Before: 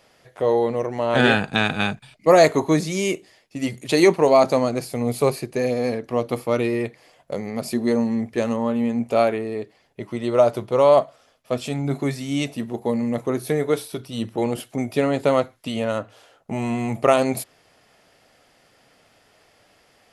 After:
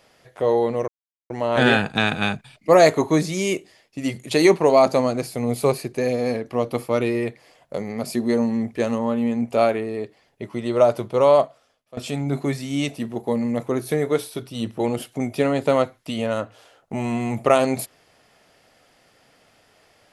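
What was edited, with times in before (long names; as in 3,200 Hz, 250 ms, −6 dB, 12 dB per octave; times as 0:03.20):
0:00.88: splice in silence 0.42 s
0:10.86–0:11.55: fade out, to −19.5 dB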